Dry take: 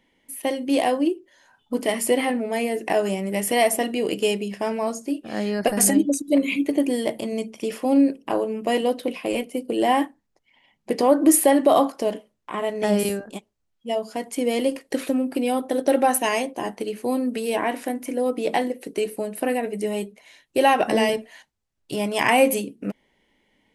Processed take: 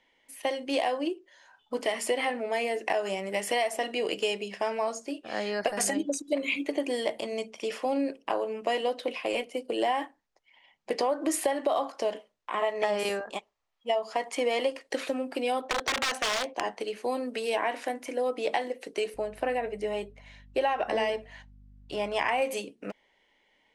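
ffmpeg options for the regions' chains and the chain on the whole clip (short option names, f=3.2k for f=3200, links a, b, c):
-filter_complex "[0:a]asettb=1/sr,asplit=3[a][b][c];[a]atrim=end=12.614[d];[b]atrim=start=12.61:end=14.72,asetpts=PTS-STARTPTS,afade=t=in:d=0.004:c=qsin,afade=t=out:st=2.106:d=0.004:c=qsin,equalizer=f=1.2k:w=0.6:g=8.5,bandreject=f=1.5k:w=7.1[e];[c]atrim=start=14.716[f];[d][e]acrossfade=d=0.004:c1=hsin:c2=qsin[g];[g][f]acrossfade=d=0.004:c1=qsin:c2=hsin,asettb=1/sr,asplit=3[h][i][j];[h]atrim=end=15.614[k];[i]atrim=start=15.61:end=16.76,asetpts=PTS-STARTPTS,afade=t=in:d=0.004:c=qsin,afade=t=out:st=1.146:d=0.004:c=qsin,lowpass=6.4k,aeval=exprs='(mod(7.08*val(0)+1,2)-1)/7.08':c=same[l];[j]atrim=start=16.756[m];[k][l]acrossfade=d=0.004:c1=hsin:c2=qsin[n];[n][m]acrossfade=d=0.004:c1=qsin:c2=hsin,asettb=1/sr,asplit=3[o][p][q];[o]atrim=end=19.144[r];[p]atrim=start=19.14:end=22.42,asetpts=PTS-STARTPTS,afade=t=in:d=0.004:c=qsin,afade=t=out:st=3.276:d=0.004:c=qsin,highshelf=f=3.5k:g=-9.5,aeval=exprs='val(0)+0.00891*(sin(2*PI*50*n/s)+sin(2*PI*2*50*n/s)/2+sin(2*PI*3*50*n/s)/3+sin(2*PI*4*50*n/s)/4+sin(2*PI*5*50*n/s)/5)':c=same[s];[q]atrim=start=22.416[t];[r][s]acrossfade=d=0.004:c1=hsin:c2=qsin[u];[u][t]acrossfade=d=0.004:c1=qsin:c2=hsin,acrossover=split=450 7800:gain=0.141 1 0.1[v][w][x];[v][w][x]amix=inputs=3:normalize=0,acompressor=threshold=-24dB:ratio=6,lowshelf=f=120:g=8"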